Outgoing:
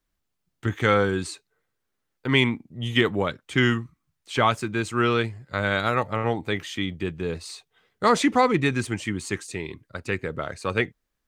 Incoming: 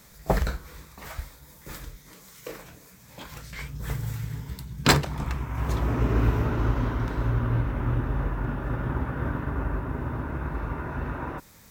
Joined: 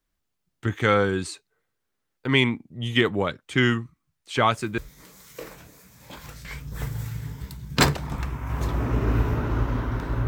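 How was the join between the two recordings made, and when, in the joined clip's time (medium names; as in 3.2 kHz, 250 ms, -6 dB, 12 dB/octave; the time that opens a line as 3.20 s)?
outgoing
4.37 s: add incoming from 1.45 s 0.41 s -17.5 dB
4.78 s: go over to incoming from 1.86 s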